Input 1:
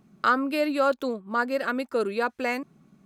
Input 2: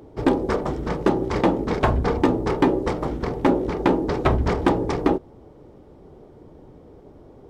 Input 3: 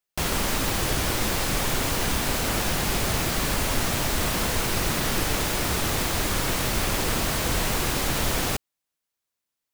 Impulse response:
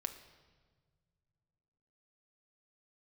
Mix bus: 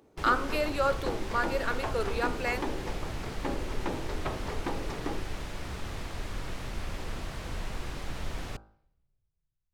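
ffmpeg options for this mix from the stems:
-filter_complex "[0:a]highpass=310,volume=0.75[s0];[1:a]volume=0.237[s1];[2:a]aemphasis=mode=reproduction:type=bsi,volume=0.211,asplit=2[s2][s3];[s3]volume=0.0891[s4];[3:a]atrim=start_sample=2205[s5];[s4][s5]afir=irnorm=-1:irlink=0[s6];[s0][s1][s2][s6]amix=inputs=4:normalize=0,lowshelf=f=290:g=-8,bandreject=f=53.03:t=h:w=4,bandreject=f=106.06:t=h:w=4,bandreject=f=159.09:t=h:w=4,bandreject=f=212.12:t=h:w=4,bandreject=f=265.15:t=h:w=4,bandreject=f=318.18:t=h:w=4,bandreject=f=371.21:t=h:w=4,bandreject=f=424.24:t=h:w=4,bandreject=f=477.27:t=h:w=4,bandreject=f=530.3:t=h:w=4,bandreject=f=583.33:t=h:w=4,bandreject=f=636.36:t=h:w=4,bandreject=f=689.39:t=h:w=4,bandreject=f=742.42:t=h:w=4,bandreject=f=795.45:t=h:w=4,bandreject=f=848.48:t=h:w=4,bandreject=f=901.51:t=h:w=4,bandreject=f=954.54:t=h:w=4,bandreject=f=1007.57:t=h:w=4,bandreject=f=1060.6:t=h:w=4,bandreject=f=1113.63:t=h:w=4,bandreject=f=1166.66:t=h:w=4,bandreject=f=1219.69:t=h:w=4,bandreject=f=1272.72:t=h:w=4,bandreject=f=1325.75:t=h:w=4,bandreject=f=1378.78:t=h:w=4,bandreject=f=1431.81:t=h:w=4,bandreject=f=1484.84:t=h:w=4,bandreject=f=1537.87:t=h:w=4,bandreject=f=1590.9:t=h:w=4"

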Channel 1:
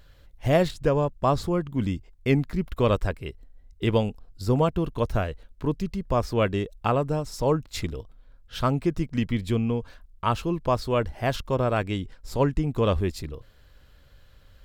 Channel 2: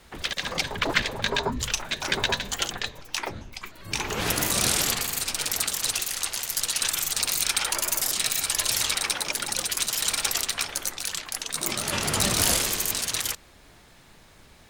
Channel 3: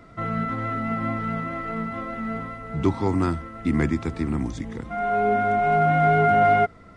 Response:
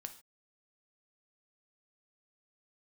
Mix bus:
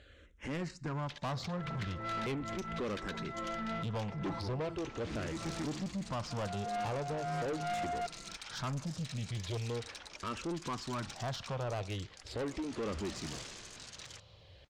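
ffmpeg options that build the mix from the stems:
-filter_complex "[0:a]highpass=87,acompressor=threshold=0.00631:ratio=1.5,asplit=2[s0][s1];[s1]afreqshift=-0.4[s2];[s0][s2]amix=inputs=2:normalize=1,volume=1.12,asplit=3[s3][s4][s5];[s4]volume=0.596[s6];[1:a]adelay=850,volume=0.106[s7];[2:a]aecho=1:1:5.9:0.94,acontrast=25,adelay=1400,volume=0.224[s8];[s5]apad=whole_len=369132[s9];[s8][s9]sidechaincompress=threshold=0.00282:ratio=4:attack=16:release=166[s10];[3:a]atrim=start_sample=2205[s11];[s6][s11]afir=irnorm=-1:irlink=0[s12];[s3][s7][s10][s12]amix=inputs=4:normalize=0,lowpass=f=7000:w=0.5412,lowpass=f=7000:w=1.3066,asoftclip=type=tanh:threshold=0.0224"

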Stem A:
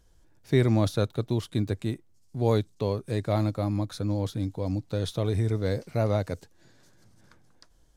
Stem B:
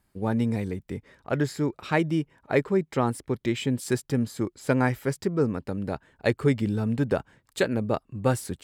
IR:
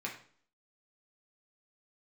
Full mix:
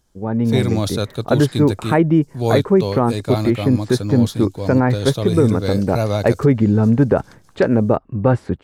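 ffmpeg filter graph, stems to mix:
-filter_complex "[0:a]bandreject=f=1900:w=7.4,volume=0.562[s0];[1:a]lowpass=1100,alimiter=limit=0.133:level=0:latency=1:release=48,volume=1.26[s1];[s0][s1]amix=inputs=2:normalize=0,highshelf=f=2200:g=9,dynaudnorm=f=260:g=3:m=3.55"

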